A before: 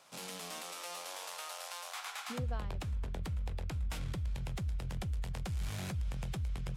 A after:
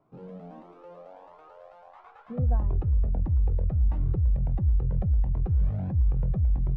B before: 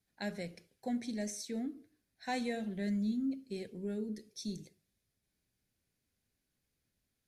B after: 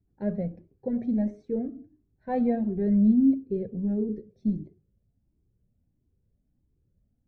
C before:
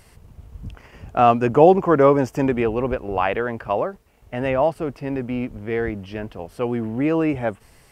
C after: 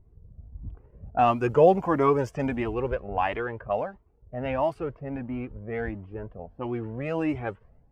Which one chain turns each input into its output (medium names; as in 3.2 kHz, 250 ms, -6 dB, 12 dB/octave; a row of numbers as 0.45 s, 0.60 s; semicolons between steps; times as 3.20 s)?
level-controlled noise filter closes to 330 Hz, open at -15 dBFS; Shepard-style flanger rising 1.5 Hz; normalise loudness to -27 LUFS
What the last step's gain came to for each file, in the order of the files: +14.5 dB, +18.5 dB, -1.5 dB